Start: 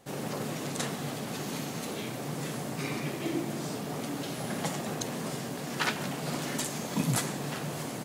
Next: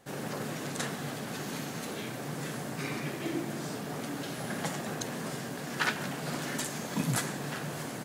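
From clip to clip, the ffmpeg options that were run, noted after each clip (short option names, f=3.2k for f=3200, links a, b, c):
-af "equalizer=f=1.6k:t=o:w=0.5:g=5.5,volume=-2dB"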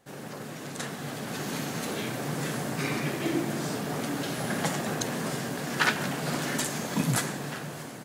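-af "dynaudnorm=f=480:g=5:m=9dB,volume=-3.5dB"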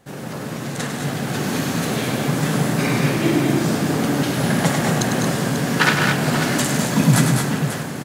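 -af "bass=f=250:g=5,treble=f=4k:g=-1,aecho=1:1:101|202|225|541:0.447|0.447|0.422|0.282,volume=7.5dB"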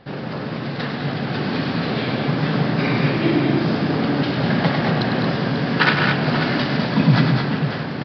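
-af "areverse,acompressor=mode=upward:threshold=-21dB:ratio=2.5,areverse,aresample=11025,aresample=44100"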